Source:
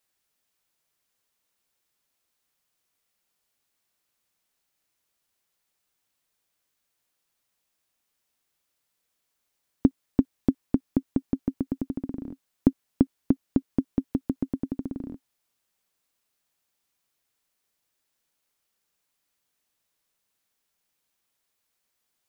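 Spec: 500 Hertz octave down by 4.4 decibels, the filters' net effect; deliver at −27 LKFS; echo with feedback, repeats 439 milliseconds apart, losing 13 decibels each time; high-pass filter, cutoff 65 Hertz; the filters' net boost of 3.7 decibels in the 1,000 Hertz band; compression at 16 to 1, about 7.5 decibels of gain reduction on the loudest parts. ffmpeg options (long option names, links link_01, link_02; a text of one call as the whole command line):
ffmpeg -i in.wav -af "highpass=65,equalizer=frequency=500:width_type=o:gain=-8.5,equalizer=frequency=1000:width_type=o:gain=8,acompressor=threshold=-24dB:ratio=16,aecho=1:1:439|878|1317:0.224|0.0493|0.0108,volume=9dB" out.wav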